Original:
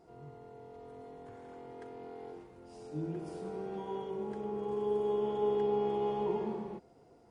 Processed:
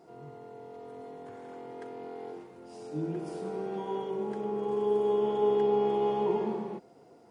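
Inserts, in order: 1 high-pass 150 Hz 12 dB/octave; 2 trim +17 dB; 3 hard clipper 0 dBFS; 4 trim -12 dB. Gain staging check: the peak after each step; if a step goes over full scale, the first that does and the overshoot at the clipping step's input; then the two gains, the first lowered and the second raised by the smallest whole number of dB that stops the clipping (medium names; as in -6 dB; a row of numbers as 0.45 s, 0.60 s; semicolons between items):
-22.0 dBFS, -5.0 dBFS, -5.0 dBFS, -17.0 dBFS; nothing clips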